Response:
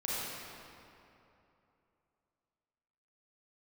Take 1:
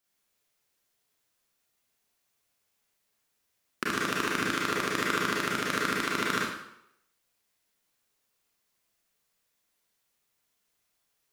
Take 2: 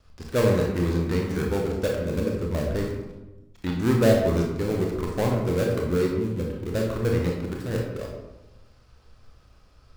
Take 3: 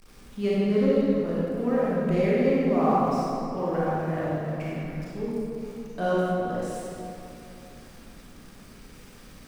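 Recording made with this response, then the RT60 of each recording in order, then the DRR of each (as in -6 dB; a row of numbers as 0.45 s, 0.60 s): 3; 0.75 s, 1.0 s, 2.9 s; -5.5 dB, -1.0 dB, -8.0 dB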